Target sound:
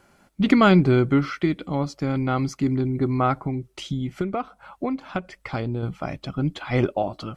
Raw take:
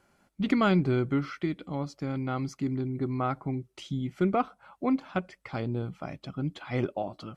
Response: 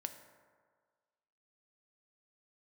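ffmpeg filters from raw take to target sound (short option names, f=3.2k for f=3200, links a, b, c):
-filter_complex "[0:a]asubboost=boost=2:cutoff=87,asettb=1/sr,asplit=3[a][b][c];[a]atrim=end=3.424[d];[b]atrim=start=3.42:end=5.83,asetpts=PTS-STARTPTS,afade=t=in:d=0.004:c=qsin,afade=t=out:st=2.406:d=0.004:c=qsin,acompressor=threshold=-31dB:ratio=12[e];[c]atrim=start=5.826[f];[d][e]acrossfade=d=0.004:c1=hsin:c2=qsin[g];[g][f]acrossfade=d=0.004:c1=qsin:c2=hsin,volume=8.5dB"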